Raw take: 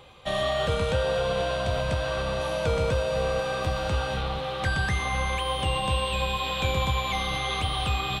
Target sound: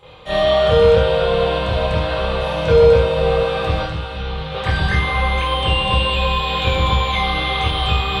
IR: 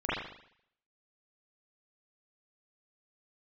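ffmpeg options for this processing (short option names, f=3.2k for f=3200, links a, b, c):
-filter_complex "[0:a]asettb=1/sr,asplit=3[a][b][c];[a]atrim=end=3.804[d];[b]atrim=start=3.8:end=4.52,asetpts=PTS-STARTPTS,afade=t=in:d=0.004:c=qsin,afade=t=out:st=0.716:d=0.004:c=qsin,acrossover=split=190|530|1300[e][f][g][h];[e]acompressor=threshold=-33dB:ratio=4[i];[f]acompressor=threshold=-46dB:ratio=4[j];[g]acompressor=threshold=-47dB:ratio=4[k];[h]acompressor=threshold=-41dB:ratio=4[l];[i][j][k][l]amix=inputs=4:normalize=0[m];[c]atrim=start=4.516[n];[d][m]acrossfade=d=0.004:c1=hsin:c2=qsin[o];[o][n]acrossfade=d=0.004:c1=qsin:c2=hsin[p];[1:a]atrim=start_sample=2205,asetrate=66150,aresample=44100[q];[p][q]afir=irnorm=-1:irlink=0,volume=2.5dB"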